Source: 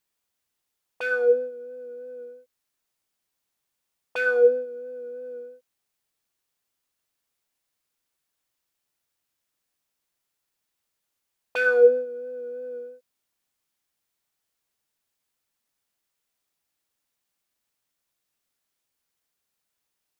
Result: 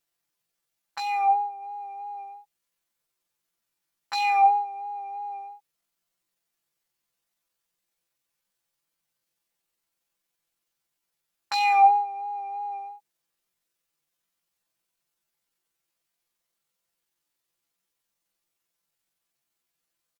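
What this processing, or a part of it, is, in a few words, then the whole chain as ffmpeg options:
chipmunk voice: -filter_complex "[0:a]asettb=1/sr,asplit=3[a][b][c];[a]atrim=end=1.024[d];[b]atrim=start=1.02:end=1.63,asetpts=PTS-STARTPTS,afade=t=in:d=0.004:c=qsin,afade=t=out:st=0.606:d=0.004:c=qsin,equalizer=f=2.2k:t=o:w=2.3:g=-5.5[e];[c]atrim=start=1.626[f];[d][e]acrossfade=d=0.004:c1=hsin:c2=qsin[g];[g][f]acrossfade=d=0.004:c1=qsin:c2=hsin,asetrate=72056,aresample=44100,atempo=0.612027,aecho=1:1:5.9:0.68"

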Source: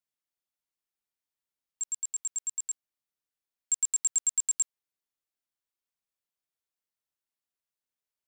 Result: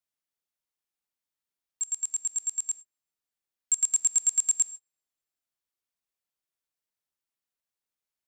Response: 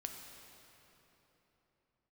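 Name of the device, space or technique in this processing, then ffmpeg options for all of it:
keyed gated reverb: -filter_complex "[0:a]asplit=3[a][b][c];[1:a]atrim=start_sample=2205[d];[b][d]afir=irnorm=-1:irlink=0[e];[c]apad=whole_len=364951[f];[e][f]sidechaingate=range=-43dB:threshold=-44dB:ratio=16:detection=peak,volume=-3.5dB[g];[a][g]amix=inputs=2:normalize=0"

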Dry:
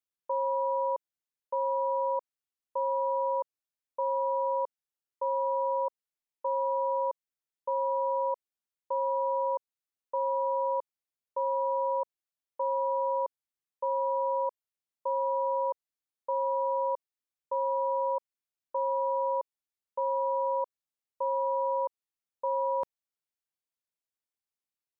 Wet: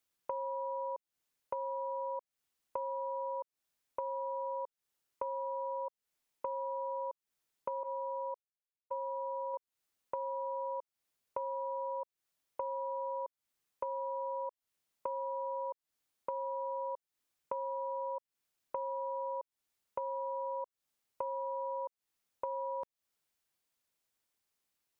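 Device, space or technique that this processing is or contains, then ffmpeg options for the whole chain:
serial compression, leveller first: -filter_complex "[0:a]asettb=1/sr,asplit=3[a][b][c];[a]atrim=end=7.834[d];[b]atrim=start=7.83:end=9.54,asetpts=PTS-STARTPTS,afade=t=in:d=0.004:c=qsin,afade=t=out:st=1.706:d=0.004:c=qsin,agate=range=-33dB:threshold=-24dB:ratio=3:detection=peak[e];[c]atrim=start=9.536[f];[d][e]acrossfade=d=0.004:c1=hsin:c2=qsin[g];[g][f]acrossfade=d=0.004:c1=qsin:c2=hsin,acompressor=threshold=-36dB:ratio=2,acompressor=threshold=-47dB:ratio=4,volume=9dB"

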